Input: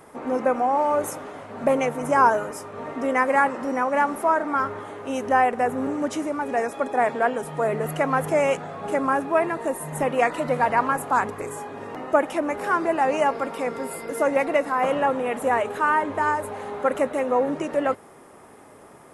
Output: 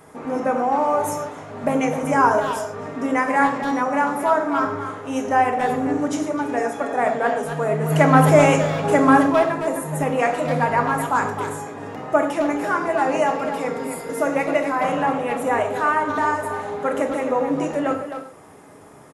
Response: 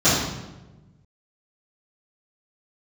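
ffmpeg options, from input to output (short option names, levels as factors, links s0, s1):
-filter_complex "[0:a]asplit=3[s0][s1][s2];[s0]afade=t=out:st=7.9:d=0.02[s3];[s1]acontrast=70,afade=t=in:st=7.9:d=0.02,afade=t=out:st=9.26:d=0.02[s4];[s2]afade=t=in:st=9.26:d=0.02[s5];[s3][s4][s5]amix=inputs=3:normalize=0,asplit=2[s6][s7];[s7]adelay=260,highpass=300,lowpass=3400,asoftclip=type=hard:threshold=0.2,volume=0.398[s8];[s6][s8]amix=inputs=2:normalize=0,asplit=2[s9][s10];[1:a]atrim=start_sample=2205,afade=t=out:st=0.2:d=0.01,atrim=end_sample=9261,highshelf=f=5200:g=11[s11];[s10][s11]afir=irnorm=-1:irlink=0,volume=0.0501[s12];[s9][s12]amix=inputs=2:normalize=0"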